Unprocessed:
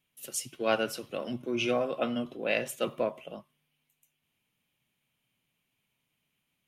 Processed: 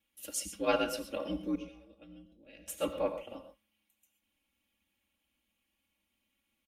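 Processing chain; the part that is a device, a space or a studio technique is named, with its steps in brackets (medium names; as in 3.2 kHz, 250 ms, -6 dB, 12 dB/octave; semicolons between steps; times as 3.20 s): 1.55–2.68 s: amplifier tone stack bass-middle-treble 10-0-1; ring-modulated robot voice (ring modulator 63 Hz; comb 3.6 ms, depth 95%); gated-style reverb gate 150 ms rising, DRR 9 dB; trim -2 dB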